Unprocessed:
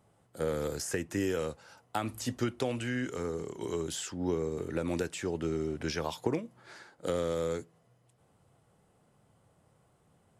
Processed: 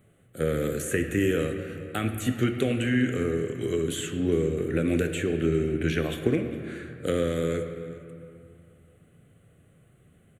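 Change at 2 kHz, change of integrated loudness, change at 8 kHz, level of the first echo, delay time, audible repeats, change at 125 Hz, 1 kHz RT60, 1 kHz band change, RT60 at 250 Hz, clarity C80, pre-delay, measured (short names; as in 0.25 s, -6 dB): +8.0 dB, +7.0 dB, +2.5 dB, -20.5 dB, 0.408 s, 1, +9.5 dB, 2.5 s, 0.0 dB, 2.7 s, 8.0 dB, 3 ms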